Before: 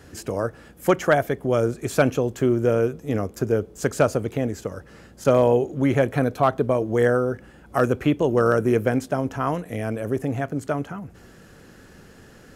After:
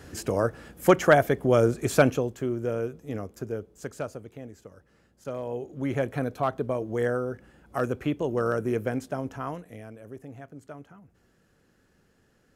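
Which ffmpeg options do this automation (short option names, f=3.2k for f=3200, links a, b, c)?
-af "volume=10dB,afade=t=out:st=1.93:d=0.44:silence=0.334965,afade=t=out:st=3.12:d=1.14:silence=0.398107,afade=t=in:st=5.45:d=0.54:silence=0.334965,afade=t=out:st=9.27:d=0.64:silence=0.316228"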